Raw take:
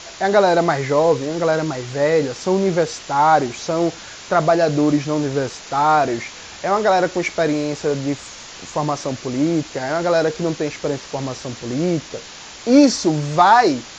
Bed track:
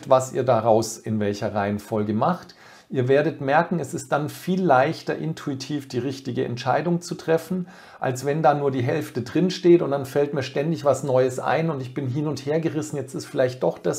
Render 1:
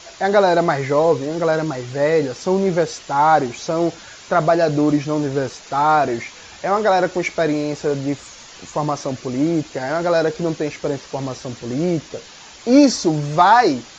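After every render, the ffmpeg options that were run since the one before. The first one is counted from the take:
-af "afftdn=nr=6:nf=-37"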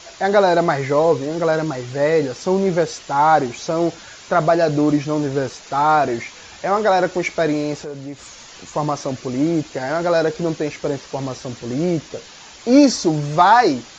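-filter_complex "[0:a]asettb=1/sr,asplit=3[s0][s1][s2];[s0]atrim=end=7.804[s3];[s1]atrim=start=7.8:end=8.72,asetpts=PTS-STARTPTS,afade=t=in:d=0.004:c=qsin,afade=t=out:st=0.916:d=0.004:c=qsin,acompressor=threshold=0.0251:ratio=2.5:attack=3.2:release=140:knee=1:detection=peak[s4];[s2]atrim=start=8.716[s5];[s3][s4]acrossfade=d=0.004:c1=hsin:c2=qsin[s6];[s6][s5]acrossfade=d=0.004:c1=qsin:c2=hsin"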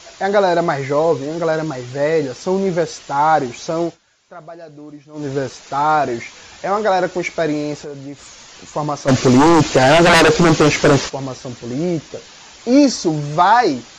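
-filter_complex "[0:a]asplit=3[s0][s1][s2];[s0]afade=t=out:st=9.07:d=0.02[s3];[s1]aeval=exprs='0.473*sin(PI/2*3.98*val(0)/0.473)':c=same,afade=t=in:st=9.07:d=0.02,afade=t=out:st=11.08:d=0.02[s4];[s2]afade=t=in:st=11.08:d=0.02[s5];[s3][s4][s5]amix=inputs=3:normalize=0,asplit=3[s6][s7][s8];[s6]atrim=end=3.98,asetpts=PTS-STARTPTS,afade=t=out:st=3.81:d=0.17:silence=0.1[s9];[s7]atrim=start=3.98:end=5.13,asetpts=PTS-STARTPTS,volume=0.1[s10];[s8]atrim=start=5.13,asetpts=PTS-STARTPTS,afade=t=in:d=0.17:silence=0.1[s11];[s9][s10][s11]concat=n=3:v=0:a=1"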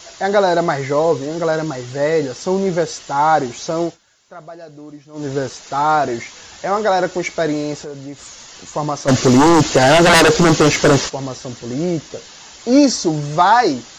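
-af "highshelf=f=8300:g=9.5,bandreject=f=2400:w=15"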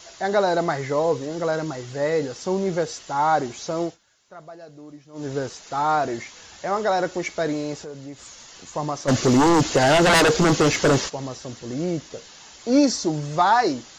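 -af "volume=0.501"

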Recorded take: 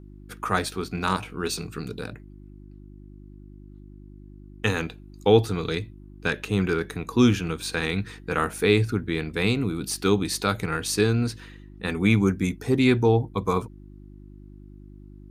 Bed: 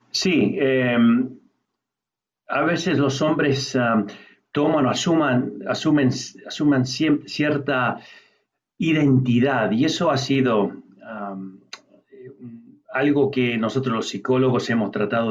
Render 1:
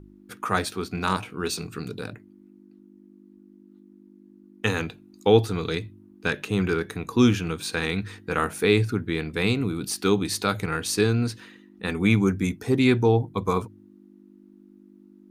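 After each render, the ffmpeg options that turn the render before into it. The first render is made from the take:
-af "bandreject=f=50:t=h:w=4,bandreject=f=100:t=h:w=4,bandreject=f=150:t=h:w=4"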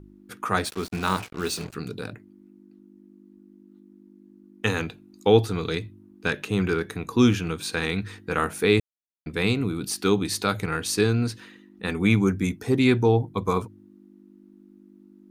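-filter_complex "[0:a]asettb=1/sr,asplit=3[s0][s1][s2];[s0]atrim=end=0.654[s3];[s1]atrim=start=0.65:end=1.75,asetpts=PTS-STARTPTS,afade=t=in:d=0.004:c=qsin,afade=t=out:st=1.096:d=0.004:c=qsin,acrusher=bits=5:mix=0:aa=0.5[s4];[s2]atrim=start=1.746[s5];[s3][s4]acrossfade=d=0.004:c1=hsin:c2=qsin[s6];[s6][s5]acrossfade=d=0.004:c1=qsin:c2=hsin,asplit=3[s7][s8][s9];[s7]atrim=end=8.8,asetpts=PTS-STARTPTS,afade=t=out:st=8.796:d=0.004:c=hsin[s10];[s8]atrim=start=8.8:end=9.26,asetpts=PTS-STARTPTS,volume=0[s11];[s9]atrim=start=9.26,asetpts=PTS-STARTPTS,afade=t=in:d=0.004:c=hsin[s12];[s10][s11][s12]concat=n=3:v=0:a=1"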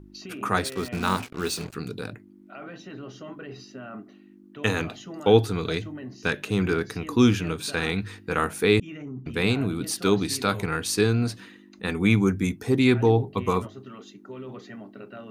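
-filter_complex "[1:a]volume=0.0944[s0];[0:a][s0]amix=inputs=2:normalize=0"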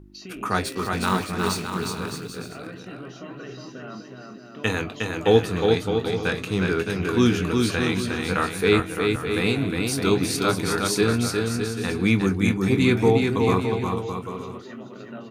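-filter_complex "[0:a]asplit=2[s0][s1];[s1]adelay=22,volume=0.299[s2];[s0][s2]amix=inputs=2:normalize=0,asplit=2[s3][s4];[s4]aecho=0:1:360|612|788.4|911.9|998.3:0.631|0.398|0.251|0.158|0.1[s5];[s3][s5]amix=inputs=2:normalize=0"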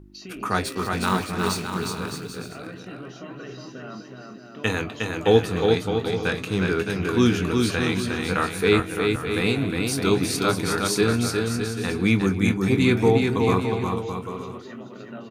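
-filter_complex "[0:a]asplit=2[s0][s1];[s1]adelay=250.7,volume=0.1,highshelf=f=4000:g=-5.64[s2];[s0][s2]amix=inputs=2:normalize=0"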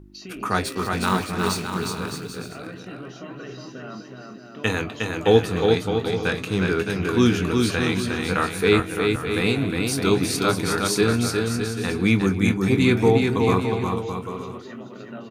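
-af "volume=1.12"

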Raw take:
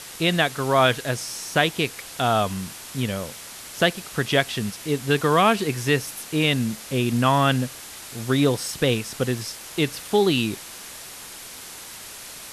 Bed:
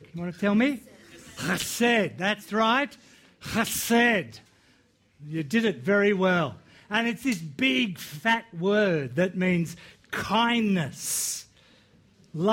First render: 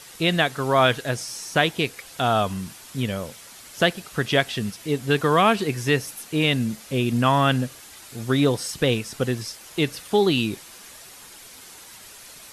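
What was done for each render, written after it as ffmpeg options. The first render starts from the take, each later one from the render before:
-af "afftdn=nr=7:nf=-40"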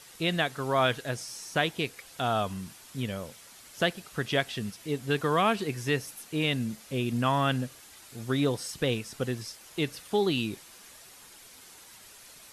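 -af "volume=0.447"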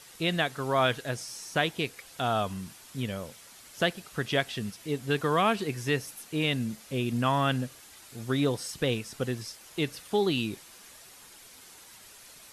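-af anull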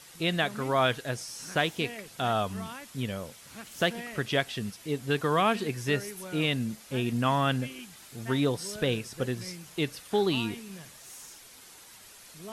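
-filter_complex "[1:a]volume=0.1[s0];[0:a][s0]amix=inputs=2:normalize=0"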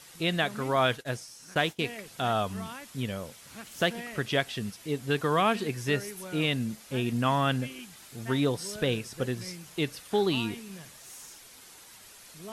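-filter_complex "[0:a]asettb=1/sr,asplit=3[s0][s1][s2];[s0]atrim=end=0.764[s3];[s1]atrim=start=0.76:end=1.83,asetpts=PTS-STARTPTS,afade=t=in:d=0.004:c=qsin,afade=t=out:st=1.066:d=0.004:c=qsin,agate=range=0.0224:threshold=0.0158:ratio=3:release=100:detection=peak[s4];[s2]atrim=start=1.826[s5];[s3][s4]acrossfade=d=0.004:c1=hsin:c2=qsin[s6];[s6][s5]acrossfade=d=0.004:c1=qsin:c2=hsin"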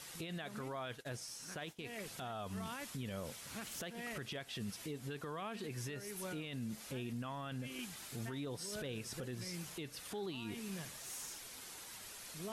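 -af "acompressor=threshold=0.0178:ratio=12,alimiter=level_in=3.55:limit=0.0631:level=0:latency=1:release=11,volume=0.282"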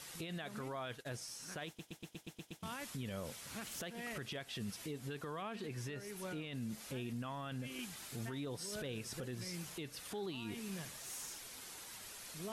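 -filter_complex "[0:a]asettb=1/sr,asplit=3[s0][s1][s2];[s0]atrim=end=5.424[s3];[s1]atrim=start=5.42:end=6.55,asetpts=PTS-STARTPTS,afade=t=in:d=0.004:c=qsin,afade=t=out:st=1.126:d=0.004:c=qsin,highshelf=f=6300:g=-6.5[s4];[s2]atrim=start=6.546[s5];[s3][s4]acrossfade=d=0.004:c1=hsin:c2=qsin[s6];[s6][s5]acrossfade=d=0.004:c1=qsin:c2=hsin,asplit=9[s7][s8][s9][s10][s11][s12][s13][s14][s15];[s7]atrim=end=1.792[s16];[s8]atrim=start=1.668:end=1.792[s17];[s9]atrim=start=1.668:end=1.792[s18];[s10]atrim=start=1.668:end=1.792[s19];[s11]atrim=start=1.668:end=1.792[s20];[s12]atrim=start=1.668:end=1.792[s21];[s13]atrim=start=1.668:end=1.792[s22];[s14]atrim=start=1.668:end=1.792[s23];[s15]atrim=start=2.628[s24];[s16][s17]acrossfade=d=0.004:c1=hsin:c2=hsin[s25];[s25][s18]acrossfade=d=0.004:c1=hsin:c2=hsin[s26];[s26][s19]acrossfade=d=0.004:c1=hsin:c2=hsin[s27];[s27][s20]acrossfade=d=0.004:c1=hsin:c2=hsin[s28];[s28][s21]acrossfade=d=0.004:c1=hsin:c2=hsin[s29];[s29][s22]acrossfade=d=0.004:c1=hsin:c2=hsin[s30];[s30][s23]acrossfade=d=0.004:c1=hsin:c2=hsin[s31];[s31][s24]acrossfade=d=0.004:c1=hsin:c2=hsin"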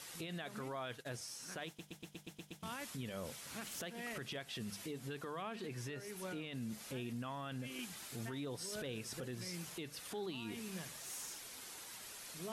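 -af "lowshelf=f=65:g=-7,bandreject=f=50:t=h:w=6,bandreject=f=100:t=h:w=6,bandreject=f=150:t=h:w=6,bandreject=f=200:t=h:w=6"

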